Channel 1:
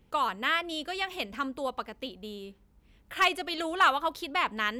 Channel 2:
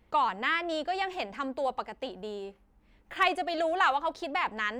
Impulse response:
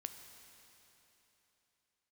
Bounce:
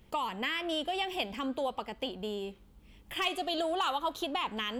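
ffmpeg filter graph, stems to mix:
-filter_complex "[0:a]highshelf=f=2.1k:g=9.5,flanger=delay=8.2:depth=7.5:regen=-82:speed=0.49:shape=sinusoidal,volume=0.5dB,asplit=2[a][b];[b]volume=-23dB[c];[1:a]equalizer=f=3.2k:w=7.5:g=10.5,acompressor=threshold=-29dB:ratio=6,volume=-1.5dB,asplit=2[d][e];[e]apad=whole_len=211496[f];[a][f]sidechaincompress=threshold=-45dB:ratio=3:attack=16:release=247[g];[2:a]atrim=start_sample=2205[h];[c][h]afir=irnorm=-1:irlink=0[i];[g][d][i]amix=inputs=3:normalize=0,lowshelf=f=360:g=3.5"

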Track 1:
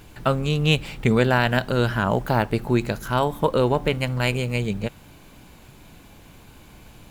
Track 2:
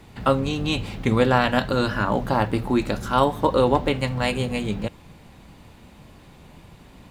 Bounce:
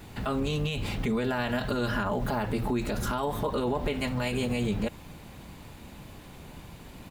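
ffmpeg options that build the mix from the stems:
-filter_complex "[0:a]volume=-7dB,asplit=2[a][b];[1:a]adelay=1.6,volume=0.5dB[c];[b]apad=whole_len=313478[d];[c][d]sidechaincompress=threshold=-33dB:ratio=8:attack=29:release=123[e];[a][e]amix=inputs=2:normalize=0,highshelf=f=10k:g=4.5,alimiter=limit=-20dB:level=0:latency=1:release=27"

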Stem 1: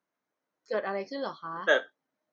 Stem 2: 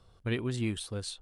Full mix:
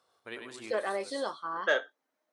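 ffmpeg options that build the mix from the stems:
-filter_complex "[0:a]highpass=310,asoftclip=type=tanh:threshold=-11.5dB,volume=2.5dB,asplit=2[a][b];[1:a]highpass=570,equalizer=f=2.9k:t=o:w=0.94:g=-4.5,volume=-3dB,asplit=2[c][d];[d]volume=-5dB[e];[b]apad=whole_len=53527[f];[c][f]sidechaincompress=threshold=-34dB:ratio=8:attack=16:release=296[g];[e]aecho=0:1:98|196|294|392:1|0.24|0.0576|0.0138[h];[a][g][h]amix=inputs=3:normalize=0,acompressor=threshold=-31dB:ratio=1.5"

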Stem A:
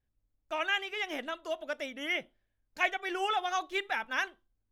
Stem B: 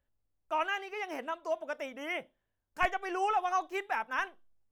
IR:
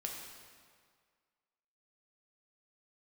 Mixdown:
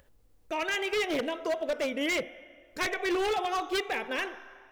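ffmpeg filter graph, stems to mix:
-filter_complex "[0:a]equalizer=f=460:t=o:w=2.7:g=5.5,volume=2.5dB,asplit=2[a][b];[b]volume=-13dB[c];[1:a]volume=23.5dB,asoftclip=hard,volume=-23.5dB,acompressor=mode=upward:threshold=-51dB:ratio=2.5,volume=1.5dB,asplit=2[d][e];[e]apad=whole_len=207801[f];[a][f]sidechaincompress=threshold=-35dB:ratio=4:attack=16:release=133[g];[2:a]atrim=start_sample=2205[h];[c][h]afir=irnorm=-1:irlink=0[i];[g][d][i]amix=inputs=3:normalize=0,equalizer=f=470:t=o:w=0.51:g=7.5,aeval=exprs='0.0708*(abs(mod(val(0)/0.0708+3,4)-2)-1)':c=same"

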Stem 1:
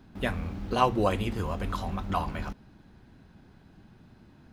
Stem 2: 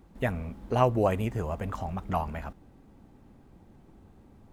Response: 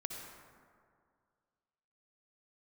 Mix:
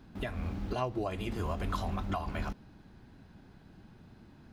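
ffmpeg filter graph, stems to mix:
-filter_complex "[0:a]alimiter=limit=-20.5dB:level=0:latency=1:release=208,volume=-1dB[a];[1:a]lowpass=f=4.7k:t=q:w=4.9,volume=-11.5dB,asplit=2[b][c];[c]apad=whole_len=199381[d];[a][d]sidechaincompress=threshold=-41dB:ratio=8:attack=38:release=174[e];[e][b]amix=inputs=2:normalize=0"

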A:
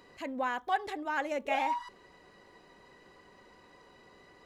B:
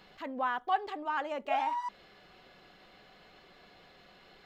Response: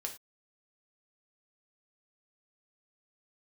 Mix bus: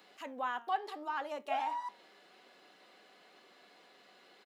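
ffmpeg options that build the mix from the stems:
-filter_complex "[0:a]aexciter=amount=3.4:drive=5.8:freq=2.8k,volume=-11dB[a];[1:a]volume=-1,adelay=0.3,volume=1dB,asplit=2[b][c];[c]apad=whole_len=196306[d];[a][d]sidechaincompress=threshold=-36dB:ratio=8:attack=16:release=201[e];[e][b]amix=inputs=2:normalize=0,highpass=f=230:w=0.5412,highpass=f=230:w=1.3066,flanger=delay=6.6:depth=6.3:regen=84:speed=0.73:shape=sinusoidal"

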